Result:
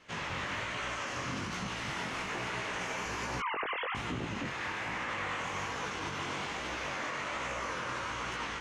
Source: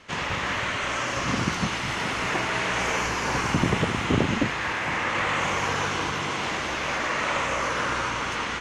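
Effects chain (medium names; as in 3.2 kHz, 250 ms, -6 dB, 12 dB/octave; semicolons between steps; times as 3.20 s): 3.40–3.95 s: formants replaced by sine waves; peak limiter -19.5 dBFS, peak gain reduction 9.5 dB; chorus 1.2 Hz, delay 16 ms, depth 7.4 ms; trim -5 dB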